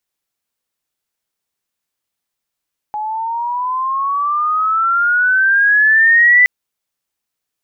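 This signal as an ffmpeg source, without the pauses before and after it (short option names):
-f lavfi -i "aevalsrc='pow(10,(-19+13.5*t/3.52)/20)*sin(2*PI*840*3.52/log(2000/840)*(exp(log(2000/840)*t/3.52)-1))':d=3.52:s=44100"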